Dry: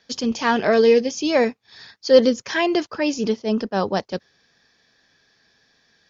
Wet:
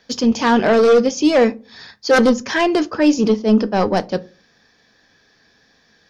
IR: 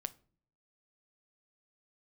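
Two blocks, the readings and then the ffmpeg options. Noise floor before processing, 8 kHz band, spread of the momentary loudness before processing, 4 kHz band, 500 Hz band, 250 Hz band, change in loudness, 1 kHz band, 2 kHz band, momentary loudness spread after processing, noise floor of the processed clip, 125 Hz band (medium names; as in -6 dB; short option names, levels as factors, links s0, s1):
-63 dBFS, no reading, 10 LU, +2.0 dB, +2.5 dB, +6.5 dB, +4.0 dB, +5.0 dB, +4.5 dB, 8 LU, -58 dBFS, +6.5 dB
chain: -filter_complex "[0:a]aeval=exprs='0.841*sin(PI/2*3.16*val(0)/0.841)':c=same,equalizer=f=4200:t=o:w=2.6:g=-4[s0];[1:a]atrim=start_sample=2205,asetrate=74970,aresample=44100[s1];[s0][s1]afir=irnorm=-1:irlink=0"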